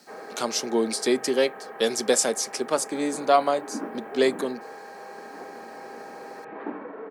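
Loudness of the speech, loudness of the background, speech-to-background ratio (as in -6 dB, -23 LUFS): -25.0 LUFS, -39.5 LUFS, 14.5 dB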